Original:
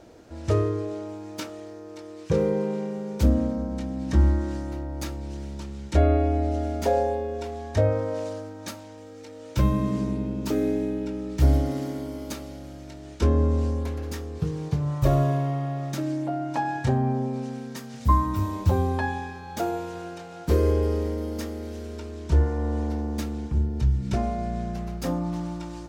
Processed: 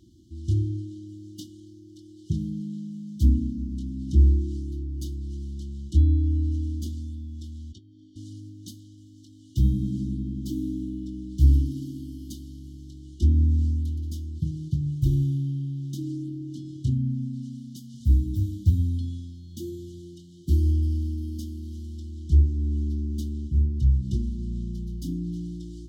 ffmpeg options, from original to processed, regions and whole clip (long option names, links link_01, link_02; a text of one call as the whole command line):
ffmpeg -i in.wav -filter_complex "[0:a]asettb=1/sr,asplit=3[link_01][link_02][link_03];[link_01]atrim=end=7.724[link_04];[link_02]atrim=start=7.72:end=8.16,asetpts=PTS-STARTPTS,afade=type=in:duration=0.004:curve=qsin,afade=type=out:start_time=0.436:duration=0.004:curve=qsin,highpass=430,lowpass=4100,acompressor=threshold=-31dB:ratio=12:attack=3.2:release=140:knee=1:detection=peak,aecho=1:1:0.9:0.45,atrim=end_sample=19404[link_05];[link_03]atrim=start=8.156[link_06];[link_04][link_05]acrossfade=duration=0.004:curve1=hsin:curve2=qsin[link_07];[link_07][link_06]acrossfade=duration=0.004:curve1=qsin:curve2=hsin,afftfilt=real='re*(1-between(b*sr/4096,370,2900))':imag='im*(1-between(b*sr/4096,370,2900))':win_size=4096:overlap=0.75,highpass=42,equalizer=frequency=72:width=0.55:gain=9,volume=-6dB" out.wav